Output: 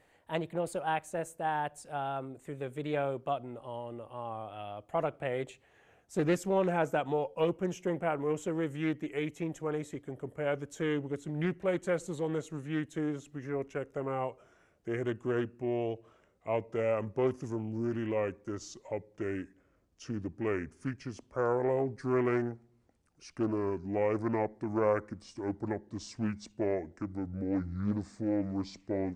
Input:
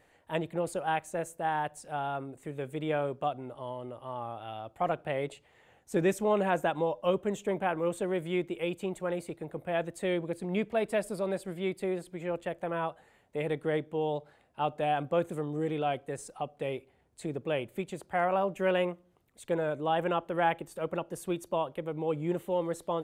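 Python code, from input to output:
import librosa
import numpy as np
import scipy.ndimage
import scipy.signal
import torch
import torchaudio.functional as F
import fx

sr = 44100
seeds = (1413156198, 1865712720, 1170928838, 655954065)

y = fx.speed_glide(x, sr, from_pct=101, to_pct=57)
y = fx.doppler_dist(y, sr, depth_ms=0.32)
y = F.gain(torch.from_numpy(y), -1.5).numpy()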